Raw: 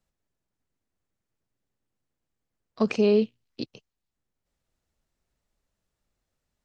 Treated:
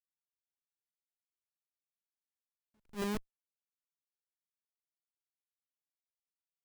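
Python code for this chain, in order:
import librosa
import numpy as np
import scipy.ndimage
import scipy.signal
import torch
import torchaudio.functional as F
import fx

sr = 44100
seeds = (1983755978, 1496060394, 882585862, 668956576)

y = fx.doppler_pass(x, sr, speed_mps=10, closest_m=3.3, pass_at_s=2.48)
y = fx.schmitt(y, sr, flips_db=-27.0)
y = fx.attack_slew(y, sr, db_per_s=300.0)
y = y * 10.0 ** (4.0 / 20.0)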